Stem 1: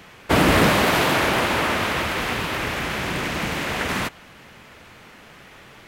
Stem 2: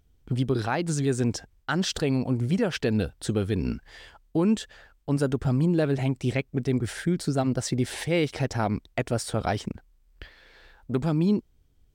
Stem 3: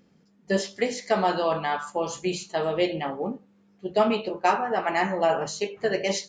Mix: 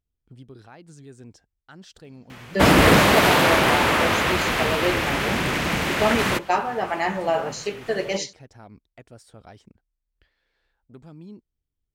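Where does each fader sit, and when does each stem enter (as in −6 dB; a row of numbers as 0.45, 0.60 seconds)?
+2.0, −19.5, 0.0 decibels; 2.30, 0.00, 2.05 seconds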